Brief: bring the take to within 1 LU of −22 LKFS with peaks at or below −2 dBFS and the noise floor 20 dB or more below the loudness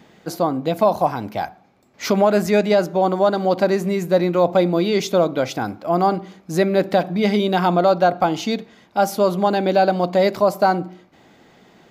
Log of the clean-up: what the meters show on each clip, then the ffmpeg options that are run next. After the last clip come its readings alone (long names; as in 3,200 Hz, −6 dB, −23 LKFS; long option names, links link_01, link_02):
integrated loudness −19.0 LKFS; sample peak −5.0 dBFS; target loudness −22.0 LKFS
→ -af "volume=-3dB"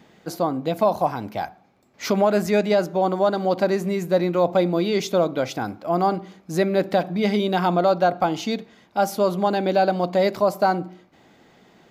integrated loudness −22.0 LKFS; sample peak −8.0 dBFS; background noise floor −56 dBFS